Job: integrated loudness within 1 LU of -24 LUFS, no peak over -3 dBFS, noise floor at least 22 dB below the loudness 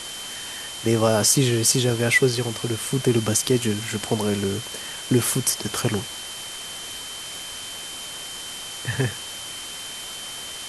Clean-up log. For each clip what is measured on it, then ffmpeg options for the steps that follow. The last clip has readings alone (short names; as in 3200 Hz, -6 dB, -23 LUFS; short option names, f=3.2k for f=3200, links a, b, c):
steady tone 3100 Hz; tone level -36 dBFS; noise floor -35 dBFS; noise floor target -46 dBFS; loudness -24.0 LUFS; peak -4.0 dBFS; loudness target -24.0 LUFS
-> -af "bandreject=f=3.1k:w=30"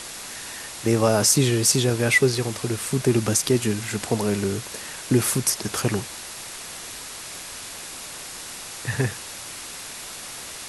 steady tone none; noise floor -37 dBFS; noise floor target -46 dBFS
-> -af "afftdn=nr=9:nf=-37"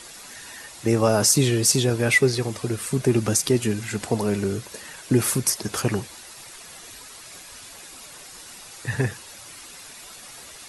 noise floor -43 dBFS; noise floor target -44 dBFS
-> -af "afftdn=nr=6:nf=-43"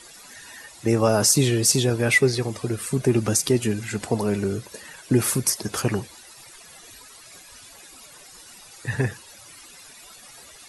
noise floor -47 dBFS; loudness -22.0 LUFS; peak -4.0 dBFS; loudness target -24.0 LUFS
-> -af "volume=-2dB"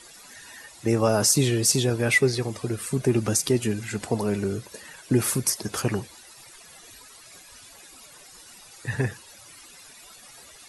loudness -24.0 LUFS; peak -6.0 dBFS; noise floor -49 dBFS